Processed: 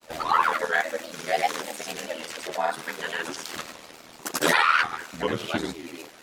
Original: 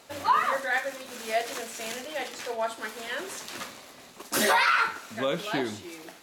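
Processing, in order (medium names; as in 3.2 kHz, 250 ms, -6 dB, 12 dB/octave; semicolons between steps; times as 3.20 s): granulator, pitch spread up and down by 3 st; ring modulator 40 Hz; trim +6.5 dB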